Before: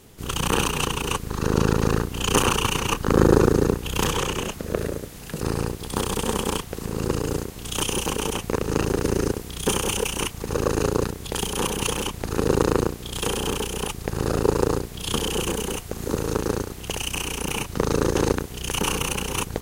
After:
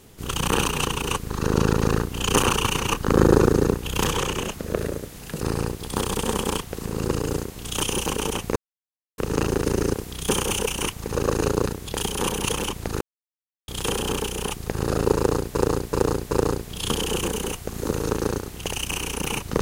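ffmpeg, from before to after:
ffmpeg -i in.wav -filter_complex "[0:a]asplit=7[link_01][link_02][link_03][link_04][link_05][link_06][link_07];[link_01]atrim=end=8.56,asetpts=PTS-STARTPTS,afade=type=out:start_time=8.556:duration=0.004:curve=hsin,apad=pad_dur=0.62[link_08];[link_02]atrim=start=8.56:end=12.39,asetpts=PTS-STARTPTS,afade=type=in:duration=0.004:curve=hsin,afade=type=out:start_time=3.826:duration=0.004:curve=hsin[link_09];[link_03]atrim=start=12.39:end=13.06,asetpts=PTS-STARTPTS,volume=0[link_10];[link_04]atrim=start=13.06:end=14.922,asetpts=PTS-STARTPTS,afade=type=in:duration=0.004:curve=hsin[link_11];[link_05]atrim=start=14.538:end=14.922[link_12];[link_06]atrim=start=14.538:end=14.922[link_13];[link_07]atrim=start=14.538[link_14];[link_08][link_09][link_10][link_11]concat=n=4:v=0:a=1[link_15];[link_15][link_12]acrossfade=duration=0.004:curve1=hsin:curve2=hsin[link_16];[link_16][link_13]acrossfade=duration=0.004:curve1=hsin:curve2=hsin[link_17];[link_17][link_14]acrossfade=duration=0.004:curve1=hsin:curve2=hsin" out.wav

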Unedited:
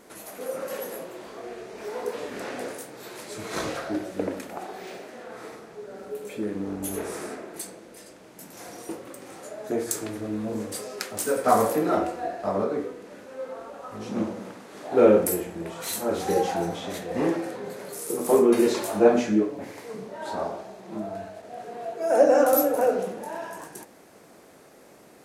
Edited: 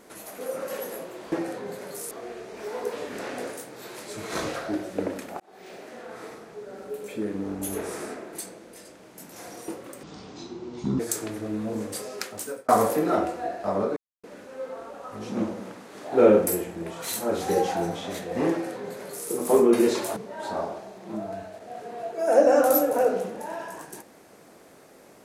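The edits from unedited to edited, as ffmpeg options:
ffmpeg -i in.wav -filter_complex "[0:a]asplit=10[link_01][link_02][link_03][link_04][link_05][link_06][link_07][link_08][link_09][link_10];[link_01]atrim=end=1.322[link_11];[link_02]atrim=start=17.298:end=18.092[link_12];[link_03]atrim=start=1.318:end=4.61,asetpts=PTS-STARTPTS,afade=type=out:start_time=3.288:duration=0.004:curve=hsin[link_13];[link_04]atrim=start=4.61:end=9.244,asetpts=PTS-STARTPTS,afade=type=in:duration=0.51[link_14];[link_05]atrim=start=9.24:end=9.79,asetpts=PTS-STARTPTS,asetrate=25137,aresample=44100[link_15];[link_06]atrim=start=9.786:end=11.48,asetpts=PTS-STARTPTS,afade=type=out:start_time=1.194:duration=0.5[link_16];[link_07]atrim=start=11.48:end=12.76,asetpts=PTS-STARTPTS,afade=type=in:duration=0.004:curve=hsin,afade=type=out:start_time=1.276:duration=0.004:curve=hsin[link_17];[link_08]atrim=start=12.76:end=13.03,asetpts=PTS-STARTPTS,volume=0[link_18];[link_09]atrim=start=13.03:end=18.962,asetpts=PTS-STARTPTS,afade=type=in:duration=0.004:curve=hsin[link_19];[link_10]atrim=start=19.988[link_20];[link_11][link_12]acrossfade=duration=0.004:curve1=hsin:curve2=hsin[link_21];[link_13][link_14]concat=n=2:v=0:a=1[link_22];[link_21][link_22]acrossfade=duration=0.004:curve1=hsin:curve2=hsin[link_23];[link_23][link_15]acrossfade=duration=0.004:curve1=hsin:curve2=hsin[link_24];[link_16][link_17][link_18][link_19]concat=n=4:v=0:a=1[link_25];[link_24][link_25]acrossfade=duration=0.004:curve1=hsin:curve2=hsin[link_26];[link_26][link_20]acrossfade=duration=0.004:curve1=hsin:curve2=hsin" out.wav

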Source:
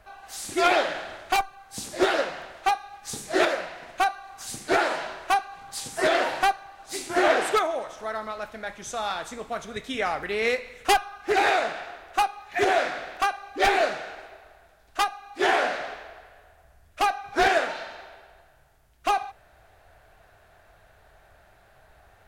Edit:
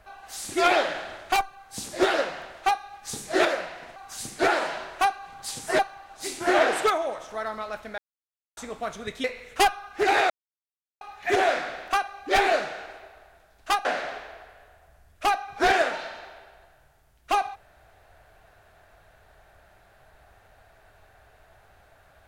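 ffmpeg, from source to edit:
ffmpeg -i in.wav -filter_complex "[0:a]asplit=9[link_01][link_02][link_03][link_04][link_05][link_06][link_07][link_08][link_09];[link_01]atrim=end=3.962[link_10];[link_02]atrim=start=4.248:end=6.082[link_11];[link_03]atrim=start=6.478:end=8.67,asetpts=PTS-STARTPTS,afade=type=out:start_time=2.188:duration=0.004:curve=hsin[link_12];[link_04]atrim=start=8.67:end=9.26,asetpts=PTS-STARTPTS,volume=0[link_13];[link_05]atrim=start=9.26:end=9.932,asetpts=PTS-STARTPTS,afade=type=in:duration=0.004:curve=hsin[link_14];[link_06]atrim=start=10.528:end=11.59,asetpts=PTS-STARTPTS,afade=type=out:start_time=1.058:duration=0.004:curve=hsin[link_15];[link_07]atrim=start=11.59:end=12.3,asetpts=PTS-STARTPTS,volume=0[link_16];[link_08]atrim=start=12.3:end=15.142,asetpts=PTS-STARTPTS,afade=type=in:duration=0.004:curve=hsin[link_17];[link_09]atrim=start=15.608[link_18];[link_10][link_11]acrossfade=duration=0.004:curve1=hsin:curve2=hsin[link_19];[link_12][link_13][link_14]concat=n=3:v=0:a=1[link_20];[link_19][link_20]acrossfade=duration=0.004:curve1=hsin:curve2=hsin[link_21];[link_15][link_16][link_17]concat=n=3:v=0:a=1[link_22];[link_21][link_22]acrossfade=duration=0.004:curve1=hsin:curve2=hsin[link_23];[link_23][link_18]acrossfade=duration=0.004:curve1=hsin:curve2=hsin" out.wav

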